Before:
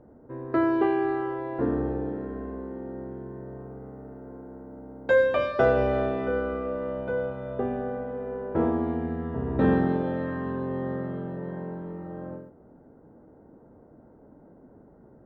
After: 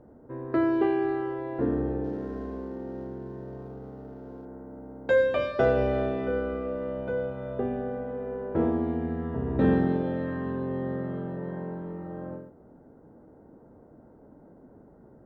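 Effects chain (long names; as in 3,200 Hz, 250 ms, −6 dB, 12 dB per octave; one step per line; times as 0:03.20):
0:02.04–0:04.45: running median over 15 samples
dynamic equaliser 1,100 Hz, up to −5 dB, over −39 dBFS, Q 1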